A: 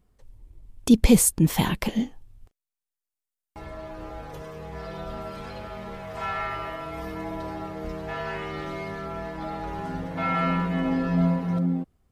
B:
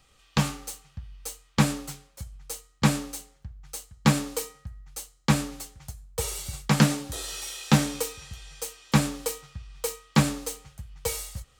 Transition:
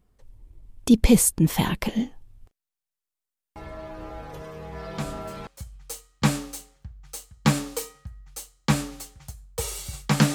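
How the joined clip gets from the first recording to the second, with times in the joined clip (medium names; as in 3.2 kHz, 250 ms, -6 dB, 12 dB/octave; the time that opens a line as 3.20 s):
A
4.89 s: add B from 1.49 s 0.58 s -11.5 dB
5.47 s: go over to B from 2.07 s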